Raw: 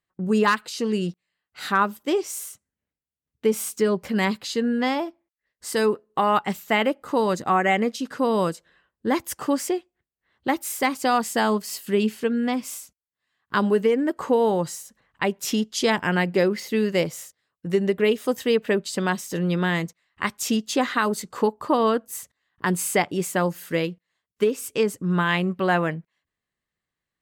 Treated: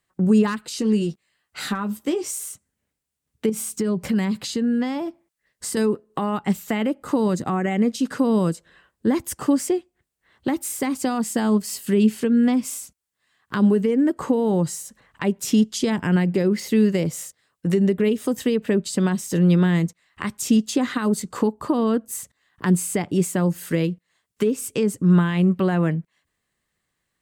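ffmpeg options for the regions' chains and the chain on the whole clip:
-filter_complex "[0:a]asettb=1/sr,asplit=3[s0][s1][s2];[s0]atrim=end=0.804[s3];[s1]atrim=start=0.8:end=2.37,asetpts=PTS-STARTPTS,afade=t=in:d=0.004:c=qsin,afade=t=out:st=1.566:d=0.004:c=qsin,acompressor=threshold=0.0562:ratio=3:attack=3.2:release=140:knee=1:detection=peak,asplit=2[s4][s5];[s5]adelay=14,volume=0.447[s6];[s4][s6]amix=inputs=2:normalize=0,atrim=end_sample=69237[s7];[s2]atrim=start=2.366[s8];[s3][s7]acrossfade=d=0.004:c1=hsin:c2=qsin[s9];[s9][s8]acrossfade=d=0.004:c1=qsin:c2=hsin,asettb=1/sr,asplit=3[s10][s11][s12];[s10]atrim=end=3.494[s13];[s11]atrim=start=3.49:end=5.77,asetpts=PTS-STARTPTS,afade=t=in:d=0.004:c=qsin,afade=t=out:st=2.276:d=0.004:c=qsin,equalizer=f=150:w=1.3:g=5.5,acompressor=threshold=0.0447:ratio=3:attack=3.2:release=140:knee=1:detection=peak[s14];[s12]atrim=start=5.766[s15];[s13][s14]acrossfade=d=0.004:c1=hsin:c2=qsin[s16];[s16][s15]acrossfade=d=0.004:c1=qsin:c2=hsin,equalizer=f=8500:w=1.6:g=5.5,alimiter=limit=0.2:level=0:latency=1:release=57,acrossover=split=320[s17][s18];[s18]acompressor=threshold=0.00891:ratio=2.5[s19];[s17][s19]amix=inputs=2:normalize=0,volume=2.66"

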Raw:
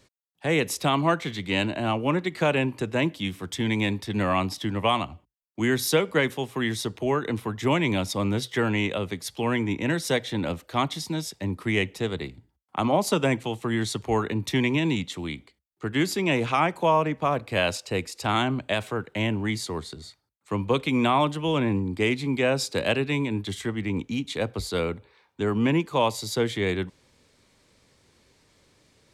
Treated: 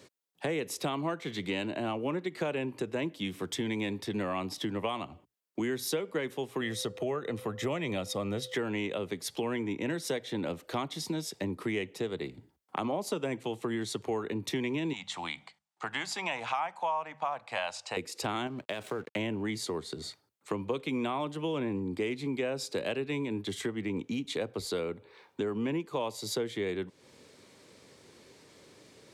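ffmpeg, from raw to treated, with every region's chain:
-filter_complex "[0:a]asettb=1/sr,asplit=3[s0][s1][s2];[s0]atrim=end=6.614[s3];[s1]atrim=start=6.61:end=8.54,asetpts=PTS-STARTPTS,afade=t=in:d=0.004:c=qsin,afade=t=out:st=1.926:d=0.004:c=qsin,bandreject=f=4600:w=29,aecho=1:1:1.6:0.39,atrim=end_sample=85113,aeval=exprs='val(0)+0.00562*sin(2*PI*510*n/s)':c=same[s4];[s2]atrim=start=8.536[s5];[s3][s4]acrossfade=d=0.004:c1=hsin:c2=qsin[s6];[s6][s5]acrossfade=d=0.004:c1=qsin:c2=hsin,asettb=1/sr,asplit=3[s7][s8][s9];[s7]atrim=end=14.934[s10];[s8]atrim=start=14.93:end=17.97,asetpts=PTS-STARTPTS,afade=t=in:d=0.004:c=qsin,afade=t=out:st=3.036:d=0.004:c=qsin,lowpass=f=9100:w=0.5412,lowpass=f=9100:w=1.3066,lowshelf=f=560:t=q:w=3:g=-12,bandreject=f=50:t=h:w=6,bandreject=f=100:t=h:w=6,bandreject=f=150:t=h:w=6,bandreject=f=200:t=h:w=6[s11];[s9]atrim=start=17.966[s12];[s10][s11]acrossfade=d=0.004:c1=hsin:c2=qsin[s13];[s13][s12]acrossfade=d=0.004:c1=qsin:c2=hsin,asettb=1/sr,asplit=3[s14][s15][s16];[s14]atrim=end=18.474[s17];[s15]atrim=start=18.47:end=19.16,asetpts=PTS-STARTPTS,afade=t=in:d=0.004:c=qsin,afade=t=out:st=0.686:d=0.004:c=qsin,acompressor=threshold=0.0282:ratio=2.5:attack=3.2:release=140:knee=1:detection=peak,aeval=exprs='sgn(val(0))*max(abs(val(0))-0.00376,0)':c=same[s18];[s16]atrim=start=19.156[s19];[s17][s18]acrossfade=d=0.004:c1=hsin:c2=qsin[s20];[s20][s19]acrossfade=d=0.004:c1=qsin:c2=hsin,highpass=120,equalizer=f=410:t=o:w=1:g=5.5,acompressor=threshold=0.0141:ratio=4,volume=1.58"

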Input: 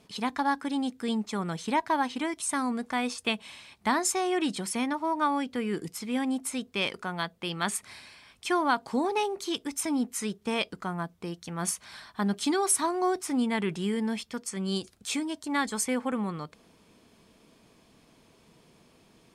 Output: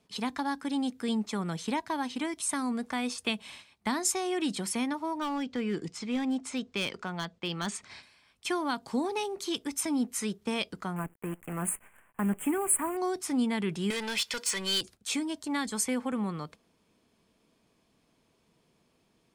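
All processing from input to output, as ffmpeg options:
-filter_complex "[0:a]asettb=1/sr,asplit=3[s0][s1][s2];[s0]atrim=end=5.184[s3];[s1]atrim=start=5.18:end=8.03,asetpts=PTS-STARTPTS,afade=t=in:d=0.004:c=qsin,afade=t=out:st=2.846:d=0.004:c=qsin,lowpass=f=7300:w=0.5412,lowpass=f=7300:w=1.3066,volume=15,asoftclip=hard,volume=0.0668[s4];[s2]atrim=start=8.026[s5];[s3][s4]acrossfade=d=0.004:c1=hsin:c2=qsin[s6];[s6][s5]acrossfade=d=0.004:c1=qsin:c2=hsin,asettb=1/sr,asplit=3[s7][s8][s9];[s7]atrim=end=10.964[s10];[s8]atrim=start=10.96:end=12.97,asetpts=PTS-STARTPTS,afade=t=in:d=0.004:c=qsin,afade=t=out:st=2.006:d=0.004:c=qsin,acrusher=bits=7:dc=4:mix=0:aa=0.000001,asuperstop=centerf=4700:order=8:qfactor=0.9[s11];[s9]atrim=start=12.966[s12];[s10][s11]acrossfade=d=0.004:c1=hsin:c2=qsin[s13];[s13][s12]acrossfade=d=0.004:c1=qsin:c2=hsin,asettb=1/sr,asplit=3[s14][s15][s16];[s14]atrim=end=13.904[s17];[s15]atrim=start=13.9:end=14.81,asetpts=PTS-STARTPTS,afade=t=in:d=0.004:c=qsin,afade=t=out:st=0.906:d=0.004:c=qsin,asplit=2[s18][s19];[s19]highpass=f=720:p=1,volume=12.6,asoftclip=type=tanh:threshold=0.1[s20];[s18][s20]amix=inputs=2:normalize=0,lowpass=f=2400:p=1,volume=0.501,tiltshelf=f=1500:g=-8.5,aecho=1:1:2:0.4,atrim=end_sample=40131[s21];[s16]atrim=start=14.806[s22];[s17][s21]acrossfade=d=0.004:c1=hsin:c2=qsin[s23];[s23][s22]acrossfade=d=0.004:c1=qsin:c2=hsin,agate=range=0.316:threshold=0.00447:ratio=16:detection=peak,acrossover=split=310|3000[s24][s25][s26];[s25]acompressor=threshold=0.0158:ratio=2[s27];[s24][s27][s26]amix=inputs=3:normalize=0"

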